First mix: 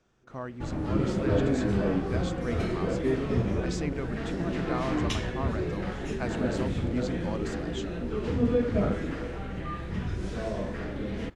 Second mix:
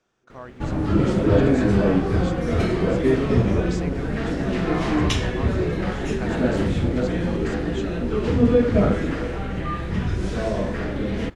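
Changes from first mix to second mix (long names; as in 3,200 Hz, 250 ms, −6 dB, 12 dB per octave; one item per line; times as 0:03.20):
speech: add low-shelf EQ 200 Hz −11 dB
background +8.0 dB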